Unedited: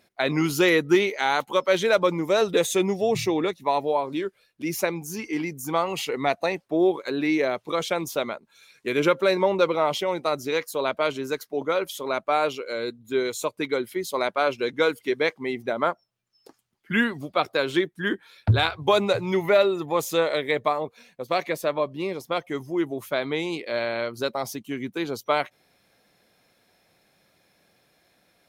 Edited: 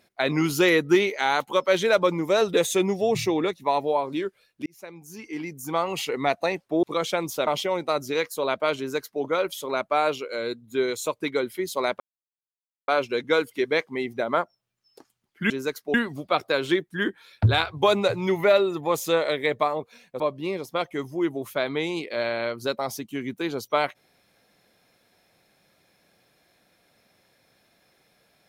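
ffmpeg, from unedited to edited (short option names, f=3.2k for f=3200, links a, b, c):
-filter_complex "[0:a]asplit=8[a][b][c][d][e][f][g][h];[a]atrim=end=4.66,asetpts=PTS-STARTPTS,afade=t=out:st=4.656:d=0.004:c=hsin[i];[b]atrim=start=4.66:end=6.832,asetpts=PTS-STARTPTS,afade=t=in:d=1.3[j];[c]atrim=start=7.608:end=8.252[k];[d]atrim=start=9.838:end=14.37,asetpts=PTS-STARTPTS,afade=t=out:st=4.528:d=0.004:c=hsin,apad=pad_dur=0.88[l];[e]atrim=start=14.37:end=16.992,asetpts=PTS-STARTPTS,afade=t=in:d=0.004:c=hsin[m];[f]atrim=start=11.148:end=11.592[n];[g]atrim=start=16.988:end=21.252[o];[h]atrim=start=21.758[p];[i][j]concat=n=2:v=0:a=1[q];[q][k]acrossfade=d=0.004:c1=hsin:c2=hsin[r];[l][m]concat=n=2:v=0:a=1[s];[r][s]acrossfade=d=0.004:c1=hsin:c2=hsin[t];[t][n]acrossfade=d=0.004:c1=hsin:c2=hsin[u];[u][o]acrossfade=d=0.004:c1=hsin:c2=hsin[v];[v][p]acrossfade=d=0.004:c1=hsin:c2=hsin"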